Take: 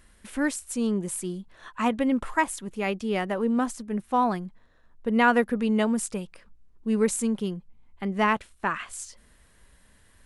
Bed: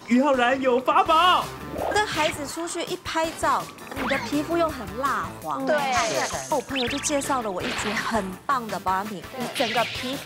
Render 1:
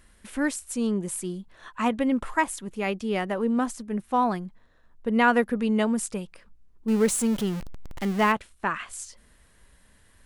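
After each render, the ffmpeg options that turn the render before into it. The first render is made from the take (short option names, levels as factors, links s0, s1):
-filter_complex "[0:a]asettb=1/sr,asplit=3[s0][s1][s2];[s0]atrim=end=6.884[s3];[s1]atrim=start=6.88:end=8.32,asetpts=PTS-STARTPTS,afade=t=in:d=0.004:c=qsin,afade=t=out:st=1.436:d=0.004:c=qsin,aeval=exprs='val(0)+0.5*0.0316*sgn(val(0))':c=same[s4];[s2]atrim=start=8.316[s5];[s3][s4]acrossfade=d=0.004:c1=hsin:c2=qsin[s6];[s6][s5]acrossfade=d=0.004:c1=qsin:c2=hsin"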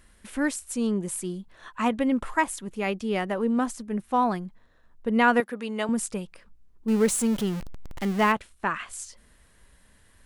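-filter_complex "[0:a]asettb=1/sr,asplit=3[s0][s1][s2];[s0]atrim=end=5.404[s3];[s1]atrim=start=5.4:end=5.89,asetpts=PTS-STARTPTS,afade=t=in:d=0.004:c=qsin,afade=t=out:st=0.486:d=0.004:c=qsin,highpass=f=630:p=1[s4];[s2]atrim=start=5.886[s5];[s3][s4]acrossfade=d=0.004:c1=hsin:c2=qsin[s6];[s6][s5]acrossfade=d=0.004:c1=qsin:c2=hsin"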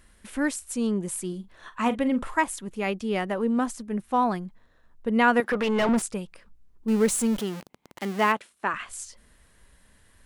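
-filter_complex "[0:a]asettb=1/sr,asplit=3[s0][s1][s2];[s0]atrim=end=1.284[s3];[s1]atrim=start=1.28:end=2.37,asetpts=PTS-STARTPTS,afade=t=in:d=0.004:c=qsin,afade=t=out:st=1.086:d=0.004:c=qsin,asplit=2[s4][s5];[s5]adelay=43,volume=0.211[s6];[s4][s6]amix=inputs=2:normalize=0,atrim=end_sample=48069[s7];[s2]atrim=start=2.366[s8];[s3][s7]acrossfade=d=0.004:c1=hsin:c2=qsin[s9];[s9][s8]acrossfade=d=0.004:c1=qsin:c2=hsin,asettb=1/sr,asplit=3[s10][s11][s12];[s10]atrim=end=5.444[s13];[s11]atrim=start=5.44:end=6.02,asetpts=PTS-STARTPTS,afade=t=in:d=0.004:c=qsin,afade=t=out:st=0.576:d=0.004:c=qsin,asplit=2[s14][s15];[s15]highpass=f=720:p=1,volume=22.4,asoftclip=type=tanh:threshold=0.188[s16];[s14][s16]amix=inputs=2:normalize=0,lowpass=f=1600:p=1,volume=0.501[s17];[s12]atrim=start=6.016[s18];[s13][s17]acrossfade=d=0.004:c1=hsin:c2=qsin[s19];[s19][s18]acrossfade=d=0.004:c1=qsin:c2=hsin,asettb=1/sr,asplit=3[s20][s21][s22];[s20]atrim=end=7.384[s23];[s21]atrim=start=7.38:end=8.74,asetpts=PTS-STARTPTS,afade=t=in:d=0.004:c=qsin,afade=t=out:st=1.356:d=0.004:c=qsin,highpass=240[s24];[s22]atrim=start=8.736[s25];[s23][s24]acrossfade=d=0.004:c1=hsin:c2=qsin[s26];[s26][s25]acrossfade=d=0.004:c1=qsin:c2=hsin"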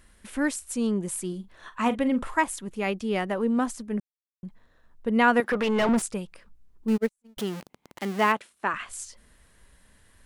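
-filter_complex "[0:a]asplit=3[s0][s1][s2];[s0]afade=t=out:st=6.96:d=0.02[s3];[s1]agate=range=0.00178:threshold=0.112:ratio=16:release=100:detection=peak,afade=t=in:st=6.96:d=0.02,afade=t=out:st=7.37:d=0.02[s4];[s2]afade=t=in:st=7.37:d=0.02[s5];[s3][s4][s5]amix=inputs=3:normalize=0,asplit=3[s6][s7][s8];[s6]atrim=end=4,asetpts=PTS-STARTPTS,afade=t=out:st=3.996:d=0.004:c=hsin[s9];[s7]atrim=start=4:end=4.43,asetpts=PTS-STARTPTS,volume=0[s10];[s8]atrim=start=4.43,asetpts=PTS-STARTPTS,afade=t=in:d=0.004:c=hsin[s11];[s9][s10][s11]concat=n=3:v=0:a=1"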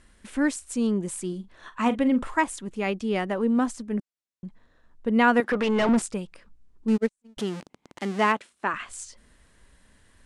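-af "lowpass=f=9600:w=0.5412,lowpass=f=9600:w=1.3066,equalizer=f=280:t=o:w=0.74:g=3"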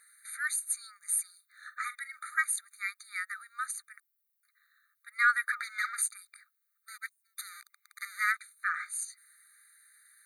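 -af "aexciter=amount=7:drive=7.6:freq=9800,afftfilt=real='re*eq(mod(floor(b*sr/1024/1200),2),1)':imag='im*eq(mod(floor(b*sr/1024/1200),2),1)':win_size=1024:overlap=0.75"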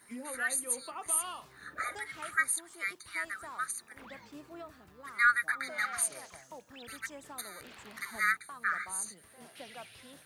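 -filter_complex "[1:a]volume=0.0631[s0];[0:a][s0]amix=inputs=2:normalize=0"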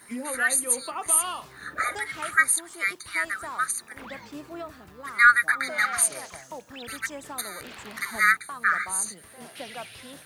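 -af "volume=2.82"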